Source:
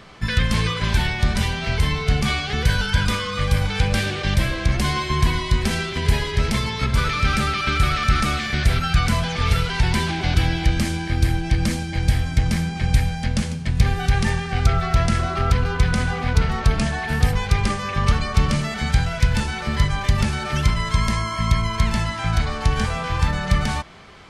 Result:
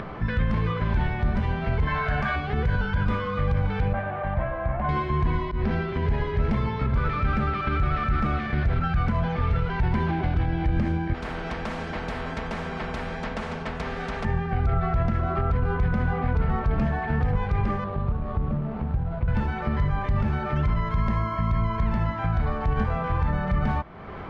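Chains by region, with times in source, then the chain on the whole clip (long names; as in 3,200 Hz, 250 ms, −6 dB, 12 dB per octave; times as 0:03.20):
0:01.87–0:02.36: low shelf with overshoot 760 Hz −9.5 dB, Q 1.5 + hollow resonant body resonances 620/1,600 Hz, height 17 dB + envelope flattener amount 70%
0:03.93–0:04.89: low-pass filter 1,600 Hz + low shelf with overshoot 520 Hz −7.5 dB, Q 3
0:05.45–0:05.89: volume swells 103 ms + Chebyshev low-pass filter 5,400 Hz, order 3
0:11.14–0:14.25: comb filter 4.5 ms, depth 89% + flanger 1.3 Hz, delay 2.3 ms, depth 9.5 ms, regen −65% + every bin compressed towards the loudest bin 4 to 1
0:17.84–0:19.28: running median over 25 samples + Chebyshev low-pass filter 4,600 Hz + downward compressor 2 to 1, threshold −25 dBFS
whole clip: low-pass filter 1,300 Hz 12 dB per octave; brickwall limiter −15 dBFS; upward compression, threshold −25 dBFS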